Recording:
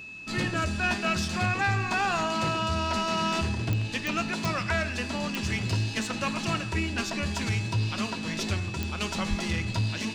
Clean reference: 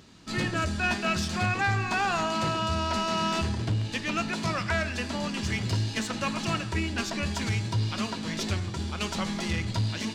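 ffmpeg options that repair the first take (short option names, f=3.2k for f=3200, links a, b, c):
-filter_complex "[0:a]adeclick=t=4,bandreject=f=2.6k:w=30,asplit=3[a][b][c];[a]afade=t=out:st=9.29:d=0.02[d];[b]highpass=f=140:w=0.5412,highpass=f=140:w=1.3066,afade=t=in:st=9.29:d=0.02,afade=t=out:st=9.41:d=0.02[e];[c]afade=t=in:st=9.41:d=0.02[f];[d][e][f]amix=inputs=3:normalize=0"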